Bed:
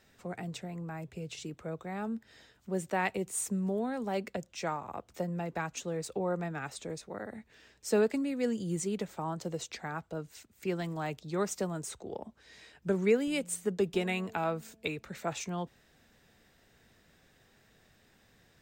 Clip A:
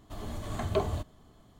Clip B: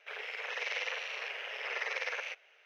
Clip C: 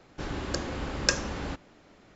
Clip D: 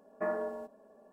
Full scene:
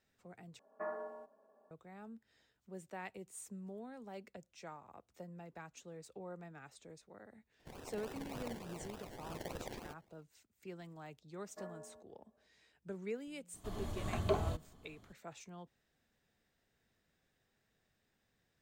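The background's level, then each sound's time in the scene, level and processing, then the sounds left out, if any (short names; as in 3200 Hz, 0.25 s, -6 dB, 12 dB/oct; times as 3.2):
bed -15.5 dB
0.59 replace with D -16.5 dB + bell 1100 Hz +11.5 dB 2.4 oct
7.59 add B -9.5 dB + decimation with a swept rate 28×, swing 60% 3.4 Hz
11.36 add D -17.5 dB
13.54 add A -4.5 dB
not used: C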